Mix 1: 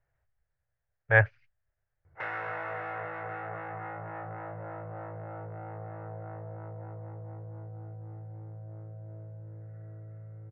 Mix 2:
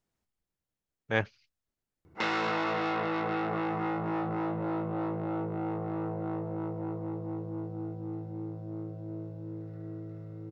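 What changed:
speech −10.5 dB
master: remove drawn EQ curve 130 Hz 0 dB, 220 Hz −29 dB, 600 Hz −2 dB, 1,100 Hz −9 dB, 1,700 Hz +1 dB, 4,100 Hz −27 dB

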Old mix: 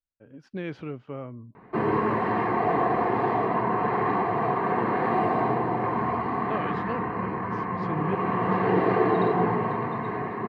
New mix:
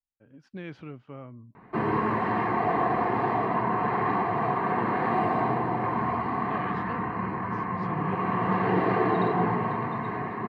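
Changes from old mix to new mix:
speech −4.0 dB
master: add parametric band 450 Hz −4.5 dB 0.87 octaves

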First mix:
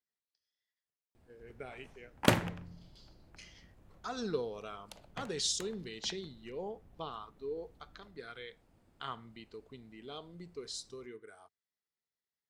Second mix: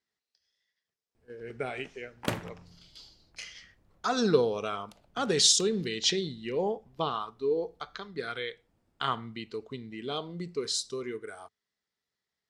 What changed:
speech +11.5 dB
background −5.5 dB

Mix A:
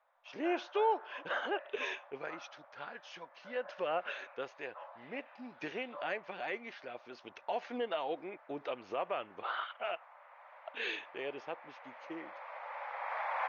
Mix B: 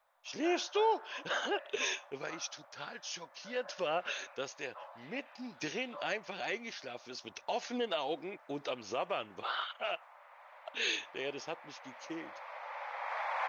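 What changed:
speech: add bass and treble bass +14 dB, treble +9 dB
master: add bass and treble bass −7 dB, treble +14 dB

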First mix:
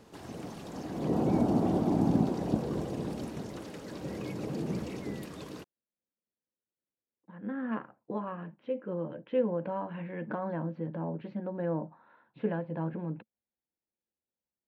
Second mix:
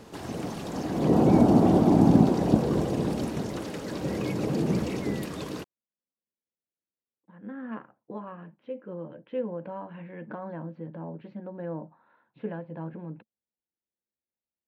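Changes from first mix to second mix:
speech −3.0 dB
background +8.0 dB

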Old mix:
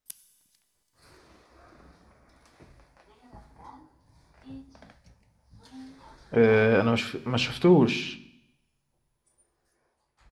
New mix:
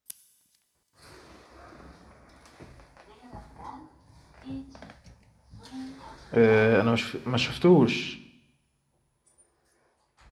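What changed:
second sound +5.5 dB
master: add high-pass filter 48 Hz

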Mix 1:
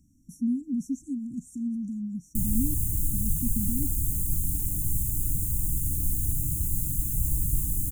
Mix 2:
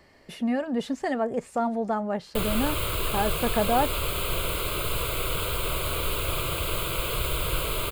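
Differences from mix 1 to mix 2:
background −3.5 dB
master: remove linear-phase brick-wall band-stop 310–5,500 Hz

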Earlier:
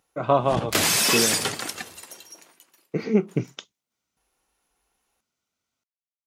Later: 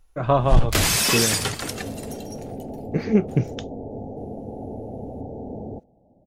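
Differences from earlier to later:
speech: remove Butterworth band-reject 1,700 Hz, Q 6.9
second sound: unmuted
master: remove high-pass filter 190 Hz 12 dB per octave

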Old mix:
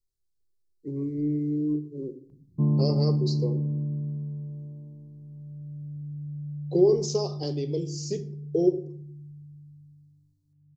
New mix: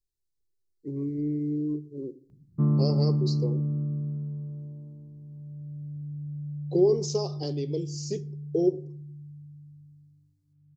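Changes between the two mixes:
speech: send −8.0 dB
background: remove linear-phase brick-wall low-pass 1,100 Hz

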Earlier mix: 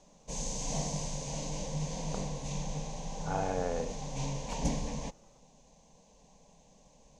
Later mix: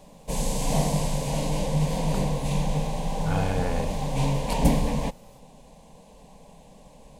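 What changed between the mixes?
speech: remove resonant band-pass 600 Hz, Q 0.92
background: remove transistor ladder low-pass 6,800 Hz, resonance 70%

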